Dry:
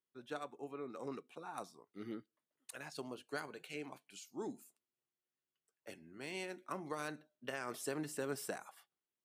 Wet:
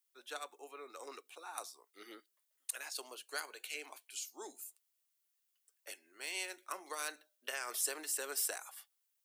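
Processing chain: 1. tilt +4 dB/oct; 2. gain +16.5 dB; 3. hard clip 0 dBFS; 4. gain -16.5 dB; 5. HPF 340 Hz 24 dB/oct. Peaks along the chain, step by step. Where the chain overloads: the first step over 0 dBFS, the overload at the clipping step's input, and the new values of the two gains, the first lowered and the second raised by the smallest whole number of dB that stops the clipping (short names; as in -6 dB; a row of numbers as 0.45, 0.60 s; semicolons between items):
-19.5, -3.0, -3.0, -19.5, -19.5 dBFS; no overload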